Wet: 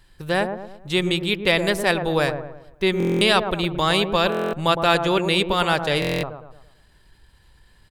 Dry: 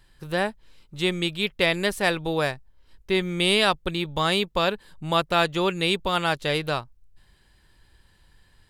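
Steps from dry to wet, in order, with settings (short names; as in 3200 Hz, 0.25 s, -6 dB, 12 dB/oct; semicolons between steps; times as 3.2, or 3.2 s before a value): tempo 1.1×; dark delay 0.111 s, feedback 42%, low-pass 1000 Hz, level -6 dB; stuck buffer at 2.98/4.3/6, samples 1024, times 9; gain +3 dB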